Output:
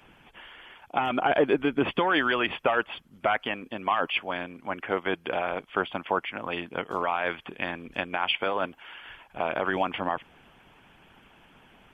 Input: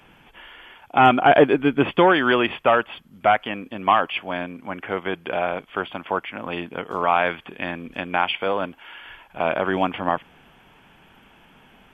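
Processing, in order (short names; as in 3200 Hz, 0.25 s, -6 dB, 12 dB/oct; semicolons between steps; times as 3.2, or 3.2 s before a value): limiter -11 dBFS, peak gain reduction 8.5 dB; harmonic-percussive split harmonic -9 dB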